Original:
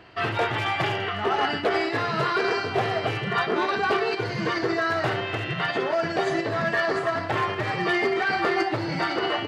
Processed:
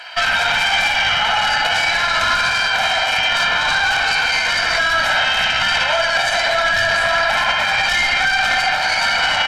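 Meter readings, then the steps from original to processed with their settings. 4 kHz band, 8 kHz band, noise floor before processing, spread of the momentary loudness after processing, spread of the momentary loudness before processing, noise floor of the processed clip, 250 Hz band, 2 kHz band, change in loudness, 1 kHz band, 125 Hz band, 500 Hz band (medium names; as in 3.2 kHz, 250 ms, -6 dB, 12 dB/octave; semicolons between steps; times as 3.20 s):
+16.0 dB, +20.0 dB, -31 dBFS, 1 LU, 3 LU, -19 dBFS, -9.0 dB, +12.5 dB, +10.0 dB, +7.5 dB, -4.0 dB, 0.0 dB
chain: flange 1.5 Hz, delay 9.2 ms, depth 8.9 ms, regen -50%; sine folder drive 6 dB, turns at -16 dBFS; high-pass 1 kHz 12 dB/octave; tilt EQ +2 dB/octave; spring tank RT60 1.7 s, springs 58 ms, chirp 30 ms, DRR 1.5 dB; Chebyshev shaper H 4 -16 dB, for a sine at -7.5 dBFS; comb 1.3 ms, depth 83%; loudness maximiser +15 dB; trim -6 dB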